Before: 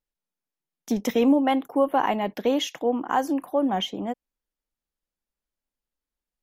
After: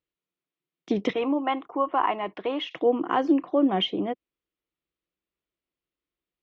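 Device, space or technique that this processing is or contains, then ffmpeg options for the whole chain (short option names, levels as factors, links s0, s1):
guitar cabinet: -filter_complex "[0:a]highpass=88,equalizer=f=230:t=q:w=4:g=-9,equalizer=f=340:t=q:w=4:g=6,equalizer=f=570:t=q:w=4:g=-4,equalizer=f=850:t=q:w=4:g=-10,equalizer=f=1600:t=q:w=4:g=-7,lowpass=f=3600:w=0.5412,lowpass=f=3600:w=1.3066,asettb=1/sr,asplit=3[s0][s1][s2];[s0]atrim=end=1.134[s3];[s1]atrim=start=1.13:end=2.71,asetpts=PTS-STARTPTS,afade=t=in:d=0.004:c=qsin,afade=t=out:st=1.576:d=0.004:c=qsin,equalizer=f=125:t=o:w=1:g=-11,equalizer=f=250:t=o:w=1:g=-8,equalizer=f=500:t=o:w=1:g=-7,equalizer=f=1000:t=o:w=1:g=6,equalizer=f=2000:t=o:w=1:g=-3,equalizer=f=4000:t=o:w=1:g=-6,equalizer=f=8000:t=o:w=1:g=-11[s4];[s2]atrim=start=2.706[s5];[s3][s4]acrossfade=d=0.004:c1=hsin:c2=qsin[s6];[s6][s5]acrossfade=d=0.004:c1=qsin:c2=hsin,volume=1.68"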